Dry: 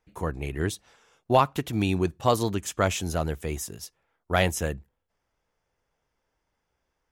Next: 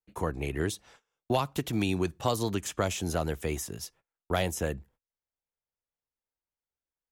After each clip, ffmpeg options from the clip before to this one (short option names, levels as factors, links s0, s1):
-filter_complex "[0:a]agate=range=0.0631:threshold=0.00158:ratio=16:detection=peak,acrossover=split=190|1000|3200[s0][s1][s2][s3];[s0]acompressor=threshold=0.0158:ratio=4[s4];[s1]acompressor=threshold=0.0355:ratio=4[s5];[s2]acompressor=threshold=0.01:ratio=4[s6];[s3]acompressor=threshold=0.0141:ratio=4[s7];[s4][s5][s6][s7]amix=inputs=4:normalize=0,volume=1.19"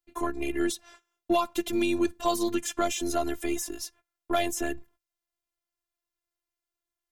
-filter_complex "[0:a]afftfilt=real='hypot(re,im)*cos(PI*b)':imag='0':win_size=512:overlap=0.75,asplit=2[s0][s1];[s1]asoftclip=type=tanh:threshold=0.0299,volume=0.562[s2];[s0][s2]amix=inputs=2:normalize=0,volume=1.5"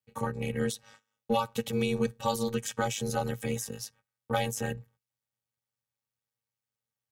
-af "aeval=exprs='val(0)*sin(2*PI*120*n/s)':c=same"